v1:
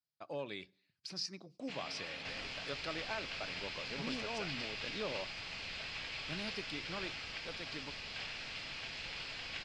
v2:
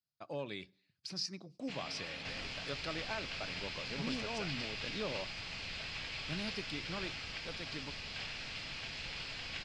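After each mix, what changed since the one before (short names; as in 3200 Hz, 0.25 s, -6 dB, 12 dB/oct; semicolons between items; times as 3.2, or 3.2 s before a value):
master: add tone controls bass +5 dB, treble +2 dB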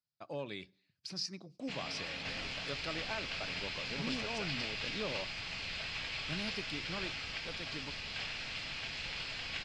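first sound +3.0 dB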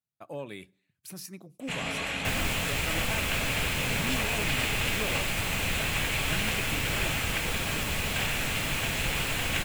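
speech -9.0 dB; second sound +6.5 dB; master: remove ladder low-pass 5200 Hz, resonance 75%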